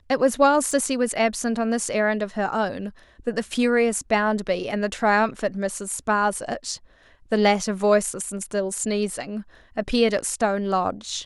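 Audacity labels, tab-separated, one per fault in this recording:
0.710000	0.710000	drop-out 3.5 ms

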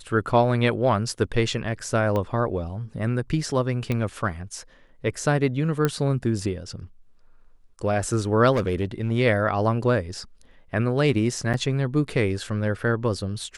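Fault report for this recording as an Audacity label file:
2.160000	2.160000	click −15 dBFS
3.920000	3.920000	click −14 dBFS
5.850000	5.850000	click −9 dBFS
8.520000	9.120000	clipping −18.5 dBFS
11.530000	11.540000	drop-out 7.6 ms

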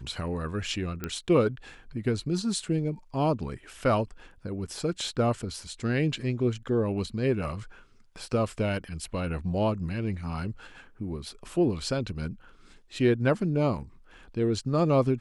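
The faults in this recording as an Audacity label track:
1.040000	1.040000	click −17 dBFS

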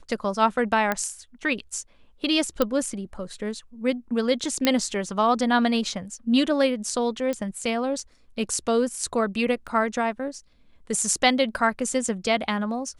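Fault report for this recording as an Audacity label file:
0.920000	0.920000	click −10 dBFS
2.620000	2.620000	click −9 dBFS
4.650000	4.650000	click −6 dBFS
7.330000	7.330000	click −16 dBFS
9.670000	9.680000	drop-out 7.7 ms

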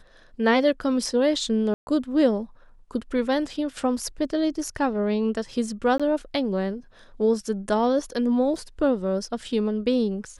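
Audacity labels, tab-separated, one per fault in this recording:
1.740000	1.870000	drop-out 130 ms
5.980000	6.000000	drop-out 16 ms
8.560000	8.560000	drop-out 2.4 ms

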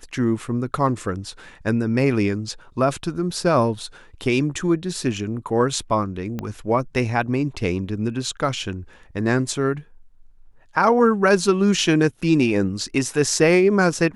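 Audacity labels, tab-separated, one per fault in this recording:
6.390000	6.390000	click −15 dBFS

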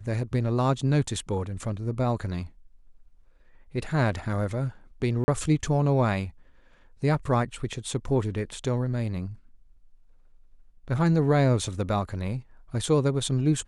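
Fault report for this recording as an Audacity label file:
5.240000	5.280000	drop-out 40 ms

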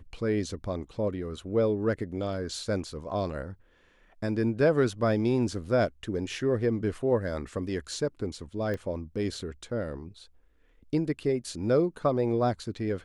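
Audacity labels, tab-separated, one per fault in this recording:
8.740000	8.740000	click −22 dBFS

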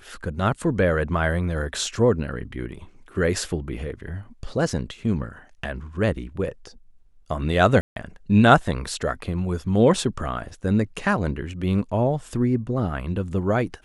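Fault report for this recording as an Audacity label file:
7.810000	7.960000	drop-out 152 ms

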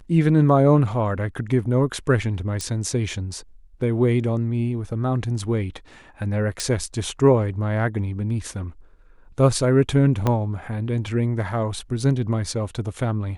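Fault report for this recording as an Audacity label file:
2.610000	2.610000	click −15 dBFS
6.600000	6.600000	click
10.270000	10.270000	click −9 dBFS

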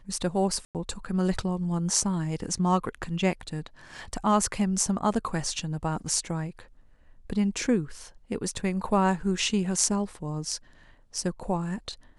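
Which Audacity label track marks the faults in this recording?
0.650000	0.750000	drop-out 98 ms

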